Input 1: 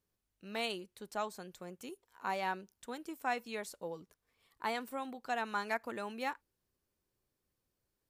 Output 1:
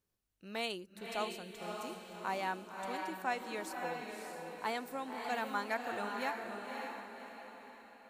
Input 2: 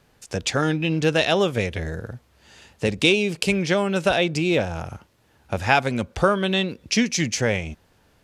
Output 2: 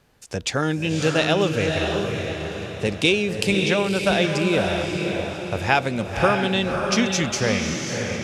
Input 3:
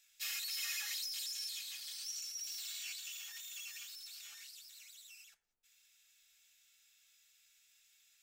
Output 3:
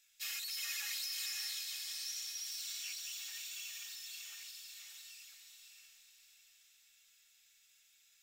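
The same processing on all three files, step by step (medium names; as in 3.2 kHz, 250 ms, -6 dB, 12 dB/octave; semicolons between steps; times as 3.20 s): echo that smears into a reverb 572 ms, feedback 46%, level -3.5 dB; trim -1 dB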